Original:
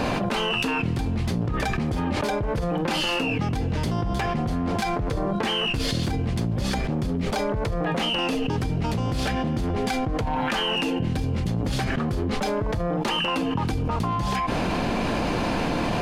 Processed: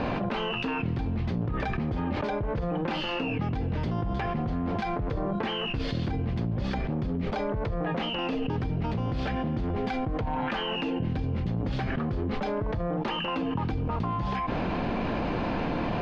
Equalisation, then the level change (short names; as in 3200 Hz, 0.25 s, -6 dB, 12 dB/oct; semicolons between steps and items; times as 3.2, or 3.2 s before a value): air absorption 250 m; -3.5 dB